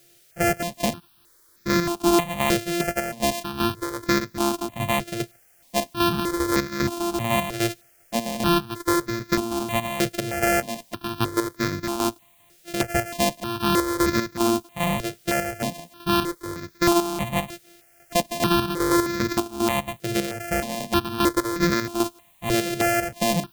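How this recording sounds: a buzz of ramps at a fixed pitch in blocks of 128 samples; chopped level 2.5 Hz, depth 60%, duty 50%; a quantiser's noise floor 10-bit, dither triangular; notches that jump at a steady rate 3.2 Hz 260–2900 Hz

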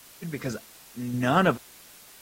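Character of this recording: random-step tremolo 4.4 Hz; a quantiser's noise floor 8-bit, dither triangular; AAC

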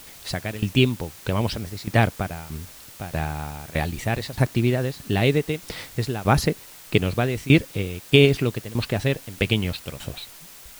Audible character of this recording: tremolo saw down 1.6 Hz, depth 90%; a quantiser's noise floor 8-bit, dither triangular

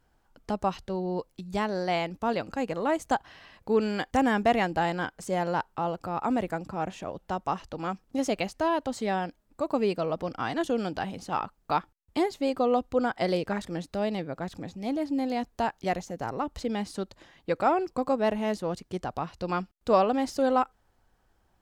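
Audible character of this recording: noise floor -69 dBFS; spectral tilt -4.5 dB/oct

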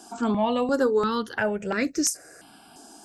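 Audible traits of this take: notches that jump at a steady rate 2.9 Hz 520–3100 Hz

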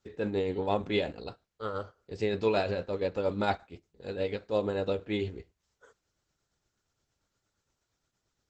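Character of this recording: tremolo triangle 8.6 Hz, depth 50%; Opus

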